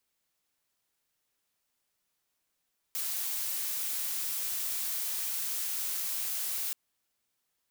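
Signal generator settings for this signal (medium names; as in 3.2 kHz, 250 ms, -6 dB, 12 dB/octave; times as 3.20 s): noise blue, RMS -33.5 dBFS 3.78 s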